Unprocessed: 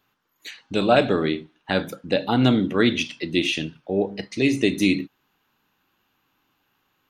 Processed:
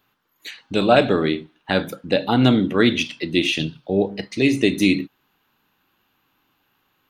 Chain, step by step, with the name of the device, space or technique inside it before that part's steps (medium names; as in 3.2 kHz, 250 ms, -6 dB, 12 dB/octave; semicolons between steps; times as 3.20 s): 3.59–4.08 s: ten-band graphic EQ 125 Hz +6 dB, 2 kHz -6 dB, 4 kHz +9 dB; exciter from parts (in parallel at -9 dB: high-pass 5 kHz 12 dB/octave + saturation -39 dBFS, distortion -5 dB + high-pass 4 kHz 24 dB/octave); on the sum: trim +2.5 dB